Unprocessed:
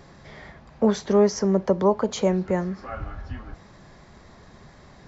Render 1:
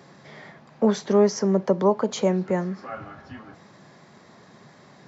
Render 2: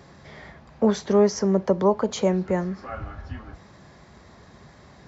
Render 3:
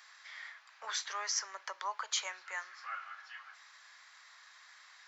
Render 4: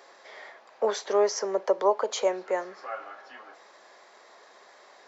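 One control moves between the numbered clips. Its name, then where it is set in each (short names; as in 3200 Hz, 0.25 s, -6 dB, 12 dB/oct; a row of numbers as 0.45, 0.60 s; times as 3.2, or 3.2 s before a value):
HPF, cutoff: 130, 49, 1300, 450 Hz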